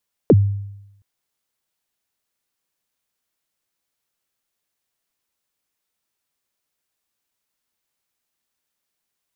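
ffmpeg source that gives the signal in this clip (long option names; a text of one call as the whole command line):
ffmpeg -f lavfi -i "aevalsrc='0.531*pow(10,-3*t/0.88)*sin(2*PI*(550*0.043/log(100/550)*(exp(log(100/550)*min(t,0.043)/0.043)-1)+100*max(t-0.043,0)))':duration=0.72:sample_rate=44100" out.wav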